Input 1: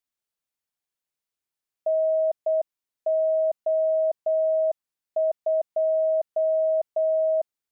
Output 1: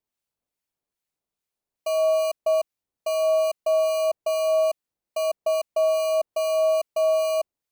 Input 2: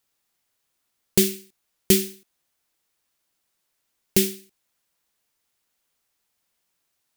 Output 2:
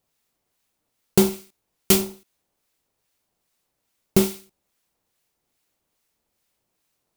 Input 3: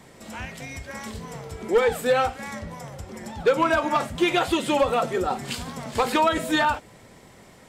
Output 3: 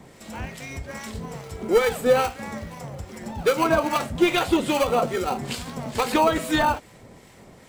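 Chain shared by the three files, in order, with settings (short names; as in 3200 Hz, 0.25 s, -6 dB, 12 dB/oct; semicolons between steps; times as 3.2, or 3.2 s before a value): in parallel at -8 dB: sample-and-hold 25×; on the sum: harmonic tremolo 2.4 Hz, depth 50%, crossover 1200 Hz; gain +1.5 dB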